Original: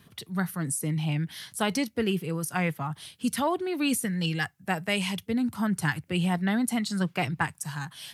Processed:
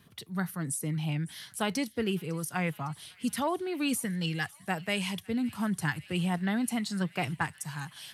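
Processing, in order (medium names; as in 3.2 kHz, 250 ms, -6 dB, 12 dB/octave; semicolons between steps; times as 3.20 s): feedback echo behind a high-pass 555 ms, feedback 83%, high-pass 2 kHz, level -20 dB; trim -3.5 dB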